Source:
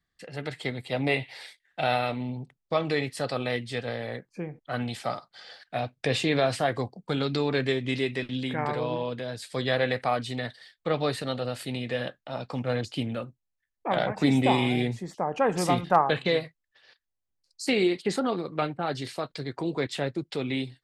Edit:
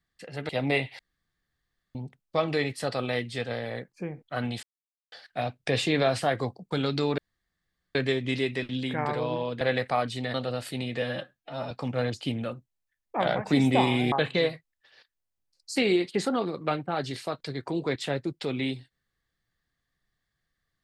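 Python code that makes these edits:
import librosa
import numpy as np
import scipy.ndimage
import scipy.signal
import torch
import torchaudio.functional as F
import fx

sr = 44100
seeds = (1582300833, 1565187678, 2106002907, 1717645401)

y = fx.edit(x, sr, fx.cut(start_s=0.49, length_s=0.37),
    fx.room_tone_fill(start_s=1.36, length_s=0.96),
    fx.silence(start_s=5.0, length_s=0.49),
    fx.insert_room_tone(at_s=7.55, length_s=0.77),
    fx.cut(start_s=9.21, length_s=0.54),
    fx.cut(start_s=10.48, length_s=0.8),
    fx.stretch_span(start_s=11.96, length_s=0.46, factor=1.5),
    fx.cut(start_s=14.83, length_s=1.2), tone=tone)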